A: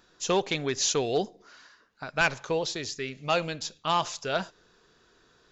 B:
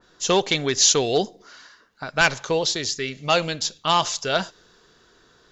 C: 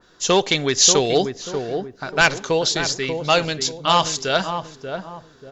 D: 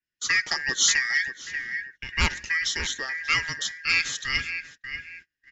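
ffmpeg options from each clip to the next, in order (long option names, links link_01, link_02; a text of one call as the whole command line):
ffmpeg -i in.wav -af "bandreject=frequency=2500:width=14,adynamicequalizer=threshold=0.01:dfrequency=2300:dqfactor=0.7:tfrequency=2300:tqfactor=0.7:attack=5:release=100:ratio=0.375:range=2.5:mode=boostabove:tftype=highshelf,volume=5.5dB" out.wav
ffmpeg -i in.wav -filter_complex "[0:a]asplit=2[link_01][link_02];[link_02]adelay=587,lowpass=frequency=850:poles=1,volume=-5.5dB,asplit=2[link_03][link_04];[link_04]adelay=587,lowpass=frequency=850:poles=1,volume=0.41,asplit=2[link_05][link_06];[link_06]adelay=587,lowpass=frequency=850:poles=1,volume=0.41,asplit=2[link_07][link_08];[link_08]adelay=587,lowpass=frequency=850:poles=1,volume=0.41,asplit=2[link_09][link_10];[link_10]adelay=587,lowpass=frequency=850:poles=1,volume=0.41[link_11];[link_01][link_03][link_05][link_07][link_09][link_11]amix=inputs=6:normalize=0,volume=2.5dB" out.wav
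ffmpeg -i in.wav -af "afftfilt=real='real(if(lt(b,272),68*(eq(floor(b/68),0)*1+eq(floor(b/68),1)*0+eq(floor(b/68),2)*3+eq(floor(b/68),3)*2)+mod(b,68),b),0)':imag='imag(if(lt(b,272),68*(eq(floor(b/68),0)*1+eq(floor(b/68),1)*0+eq(floor(b/68),2)*3+eq(floor(b/68),3)*2)+mod(b,68),b),0)':win_size=2048:overlap=0.75,equalizer=frequency=740:width_type=o:width=0.48:gain=-10,agate=range=-30dB:threshold=-38dB:ratio=16:detection=peak,volume=-6.5dB" out.wav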